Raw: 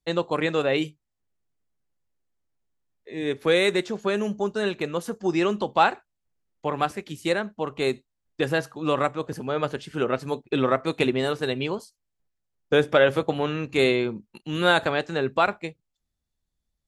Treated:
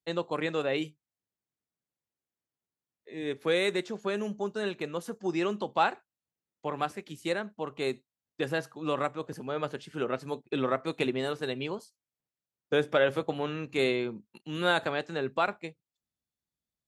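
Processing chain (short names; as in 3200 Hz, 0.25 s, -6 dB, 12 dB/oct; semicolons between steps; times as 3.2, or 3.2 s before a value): HPF 110 Hz; gain -6.5 dB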